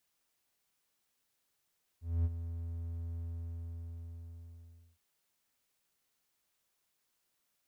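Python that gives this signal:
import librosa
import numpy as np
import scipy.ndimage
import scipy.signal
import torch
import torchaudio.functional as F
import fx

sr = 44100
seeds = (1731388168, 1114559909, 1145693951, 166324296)

y = fx.adsr_tone(sr, wave='triangle', hz=83.9, attack_ms=238.0, decay_ms=39.0, sustain_db=-11.0, held_s=1.17, release_ms=1800.0, level_db=-24.0)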